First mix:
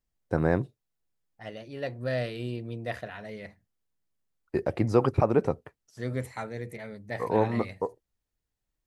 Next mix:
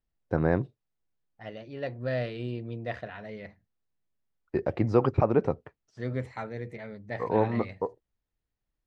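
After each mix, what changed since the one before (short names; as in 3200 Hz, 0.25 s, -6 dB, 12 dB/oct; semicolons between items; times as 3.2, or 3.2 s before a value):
master: add air absorption 140 m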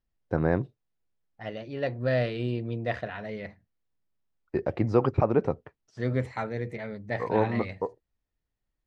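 second voice +4.5 dB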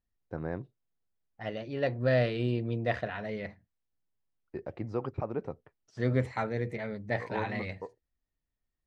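first voice -11.0 dB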